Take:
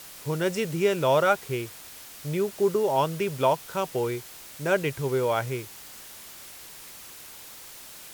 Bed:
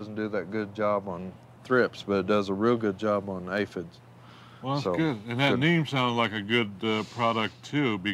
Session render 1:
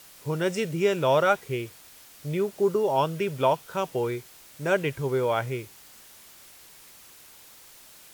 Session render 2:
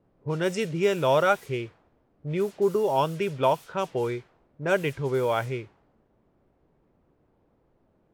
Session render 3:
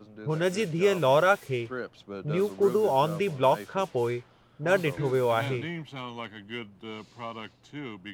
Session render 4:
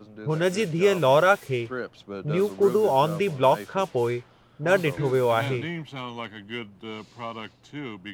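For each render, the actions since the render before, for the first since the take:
noise reduction from a noise print 6 dB
low-pass that shuts in the quiet parts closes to 360 Hz, open at −22 dBFS
mix in bed −12.5 dB
level +3 dB

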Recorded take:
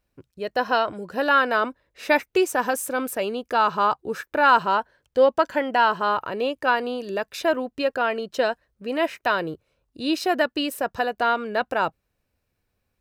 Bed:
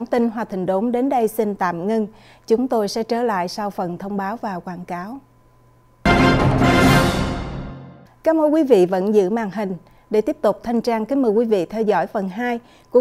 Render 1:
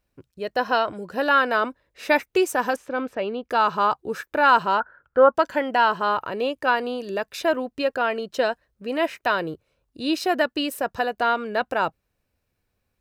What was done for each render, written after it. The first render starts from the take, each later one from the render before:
0:02.76–0:03.50: high-frequency loss of the air 230 metres
0:04.80–0:05.35: low-pass with resonance 1,400 Hz, resonance Q 15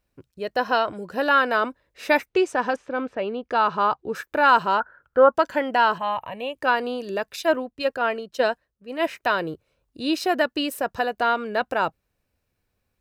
0:02.29–0:04.15: high-frequency loss of the air 93 metres
0:05.98–0:06.55: phaser with its sweep stopped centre 1,400 Hz, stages 6
0:07.36–0:09.07: multiband upward and downward expander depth 100%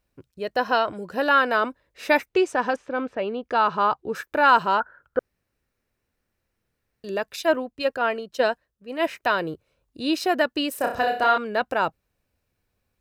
0:05.19–0:07.04: fill with room tone
0:10.77–0:11.38: flutter between parallel walls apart 5.4 metres, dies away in 0.42 s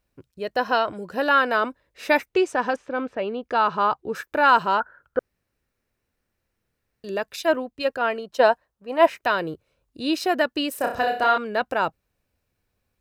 0:08.23–0:09.08: parametric band 870 Hz +7.5 dB → +14 dB 1.1 octaves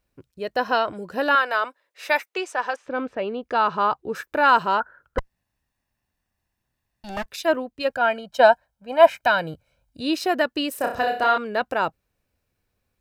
0:01.35–0:02.86: high-pass filter 640 Hz
0:05.18–0:07.26: lower of the sound and its delayed copy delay 1.1 ms
0:07.90–0:10.01: comb filter 1.3 ms, depth 76%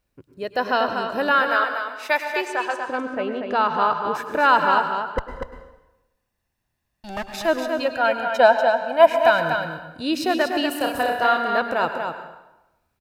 single-tap delay 241 ms −6 dB
dense smooth reverb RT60 0.98 s, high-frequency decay 0.8×, pre-delay 90 ms, DRR 8 dB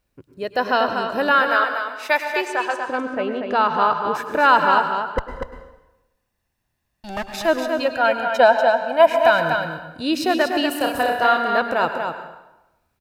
level +2 dB
brickwall limiter −3 dBFS, peak gain reduction 3 dB

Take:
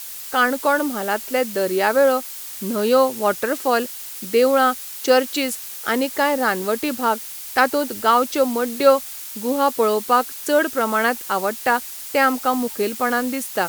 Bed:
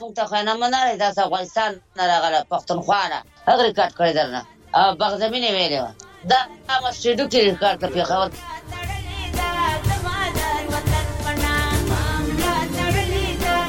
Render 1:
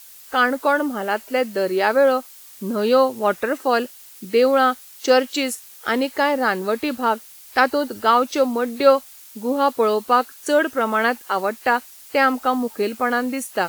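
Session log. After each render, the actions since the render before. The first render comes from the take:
noise reduction from a noise print 10 dB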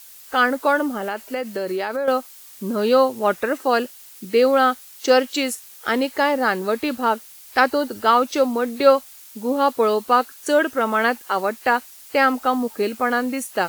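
0:00.88–0:02.08: downward compressor, threshold −21 dBFS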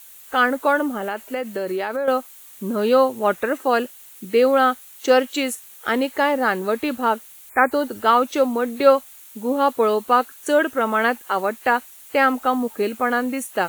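0:07.49–0:07.72: time-frequency box erased 2,500–6,700 Hz
parametric band 5,000 Hz −10 dB 0.4 octaves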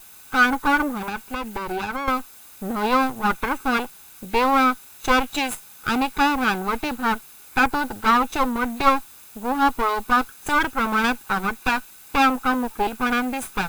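lower of the sound and its delayed copy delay 0.8 ms
hollow resonant body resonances 820/1,500 Hz, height 8 dB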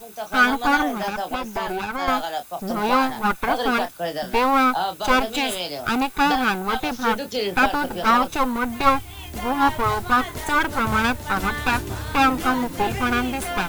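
mix in bed −9 dB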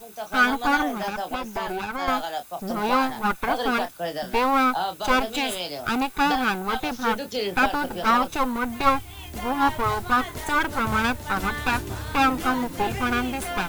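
level −2.5 dB

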